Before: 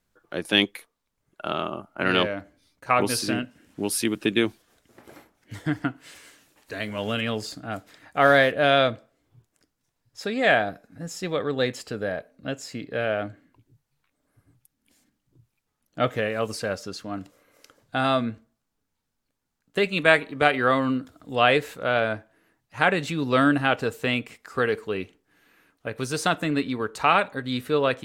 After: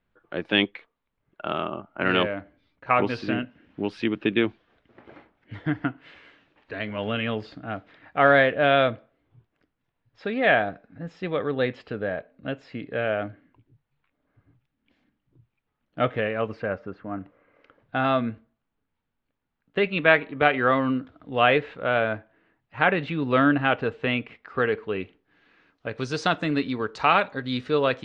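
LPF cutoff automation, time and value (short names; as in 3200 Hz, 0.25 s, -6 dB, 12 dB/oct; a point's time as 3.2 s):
LPF 24 dB/oct
16.27 s 3200 Hz
16.96 s 1900 Hz
18.17 s 3200 Hz
24.9 s 3200 Hz
25.93 s 5400 Hz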